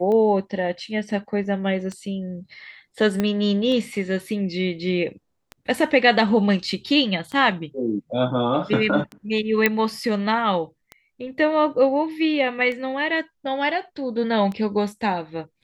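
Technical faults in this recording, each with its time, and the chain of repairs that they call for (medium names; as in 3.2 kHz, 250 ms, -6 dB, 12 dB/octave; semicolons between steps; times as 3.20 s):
tick 33 1/3 rpm -19 dBFS
3.20 s: pop -10 dBFS
9.66 s: pop -4 dBFS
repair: de-click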